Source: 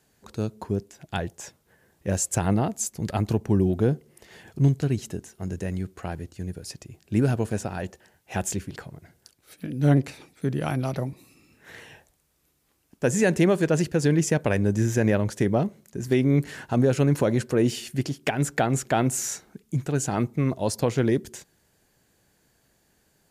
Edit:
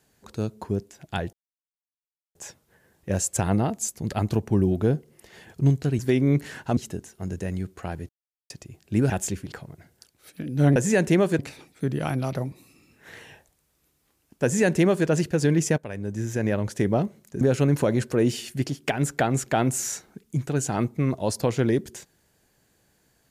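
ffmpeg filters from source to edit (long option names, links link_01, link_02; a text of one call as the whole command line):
ffmpeg -i in.wav -filter_complex "[0:a]asplit=11[link_01][link_02][link_03][link_04][link_05][link_06][link_07][link_08][link_09][link_10][link_11];[link_01]atrim=end=1.33,asetpts=PTS-STARTPTS,afade=type=out:start_time=1.326:duration=0.004:curve=hsin,apad=pad_dur=1.02[link_12];[link_02]atrim=start=1.33:end=4.972,asetpts=PTS-STARTPTS,afade=type=in:duration=0.004:curve=hsin[link_13];[link_03]atrim=start=16.018:end=16.802[link_14];[link_04]atrim=start=4.968:end=6.29,asetpts=PTS-STARTPTS,afade=type=out:start_time=1.318:duration=0.004:curve=hsin[link_15];[link_05]atrim=start=6.29:end=6.7,asetpts=PTS-STARTPTS,volume=0[link_16];[link_06]atrim=start=6.7:end=7.302,asetpts=PTS-STARTPTS,afade=type=in:duration=0.004:curve=hsin[link_17];[link_07]atrim=start=8.338:end=10.002[link_18];[link_08]atrim=start=13.048:end=13.682[link_19];[link_09]atrim=start=9.998:end=14.39,asetpts=PTS-STARTPTS,afade=type=out:start_time=4.388:duration=0.004:curve=hsin:silence=0.16788[link_20];[link_10]atrim=start=14.39:end=16.022,asetpts=PTS-STARTPTS,afade=type=in:duration=1.11:silence=0.16788[link_21];[link_11]atrim=start=16.798[link_22];[link_12][link_13]concat=n=2:v=0:a=1[link_23];[link_23][link_14]acrossfade=duration=0.004:curve1=hsin:curve2=hsin[link_24];[link_15][link_16][link_17]concat=n=3:v=0:a=1[link_25];[link_24][link_25]acrossfade=duration=0.004:curve1=hsin:curve2=hsin[link_26];[link_26][link_18]acrossfade=duration=0.004:curve1=hsin:curve2=hsin[link_27];[link_27][link_19]acrossfade=duration=0.004:curve1=hsin:curve2=hsin[link_28];[link_20][link_21]concat=n=2:v=0:a=1[link_29];[link_28][link_29]acrossfade=duration=0.004:curve1=hsin:curve2=hsin[link_30];[link_30][link_22]acrossfade=duration=0.004:curve1=hsin:curve2=hsin" out.wav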